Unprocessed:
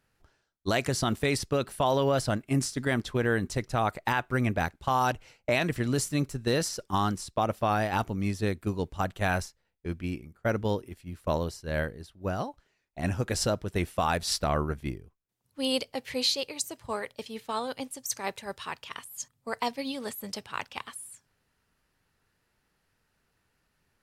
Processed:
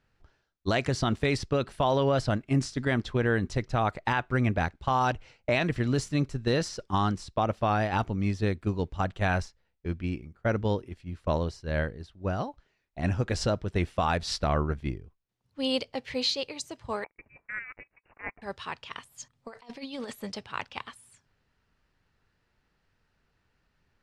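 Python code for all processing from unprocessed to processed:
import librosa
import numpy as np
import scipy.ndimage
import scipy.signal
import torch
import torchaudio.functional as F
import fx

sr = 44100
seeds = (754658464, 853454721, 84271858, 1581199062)

y = fx.chain(x, sr, fx.highpass(hz=560.0, slope=12),
    fx.power_curve(exponent=1.4),
    fx.freq_invert(carrier_hz=2800), at=(17.04, 18.42))
y = fx.chain(y, sr, fx.peak_eq(hz=79.0, db=-7.5, octaves=2.2),
    fx.over_compress(threshold_db=-38.0, ratio=-0.5), at=(19.33, 20.29))
y = scipy.signal.sosfilt(scipy.signal.butter(2, 5200.0, 'lowpass', fs=sr, output='sos'), y)
y = fx.low_shelf(y, sr, hz=98.0, db=6.0)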